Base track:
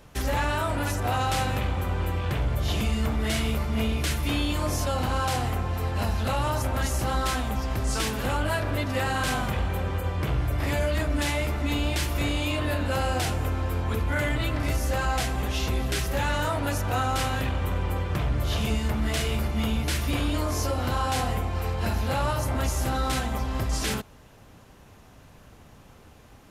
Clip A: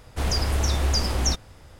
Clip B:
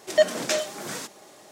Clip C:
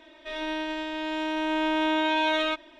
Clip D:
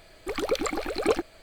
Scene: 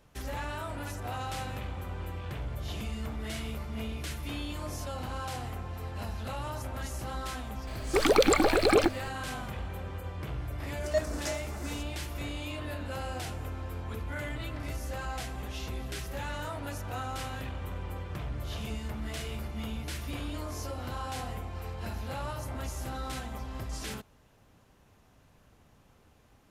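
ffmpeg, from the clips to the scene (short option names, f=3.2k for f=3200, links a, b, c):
-filter_complex "[0:a]volume=-10.5dB[a];[4:a]alimiter=level_in=17.5dB:limit=-1dB:release=50:level=0:latency=1[b];[2:a]asuperstop=centerf=2800:order=4:qfactor=1.1[c];[b]atrim=end=1.42,asetpts=PTS-STARTPTS,volume=-10.5dB,afade=t=in:d=0.004:c=hsin,afade=t=out:st=1.416:d=0.004:c=hsin,adelay=7670[d];[c]atrim=end=1.51,asetpts=PTS-STARTPTS,volume=-10dB,afade=t=in:d=0.004:c=hsin,afade=t=out:st=1.506:d=0.004:c=hsin,adelay=10760[e];[a][d][e]amix=inputs=3:normalize=0"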